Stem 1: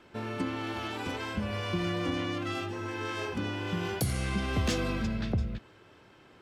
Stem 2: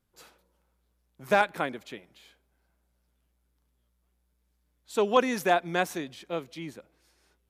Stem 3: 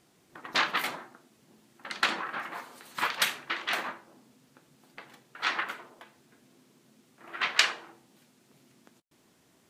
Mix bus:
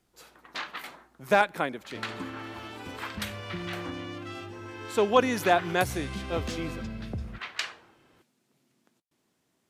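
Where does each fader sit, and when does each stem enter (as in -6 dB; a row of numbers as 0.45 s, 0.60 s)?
-5.5 dB, +1.0 dB, -9.5 dB; 1.80 s, 0.00 s, 0.00 s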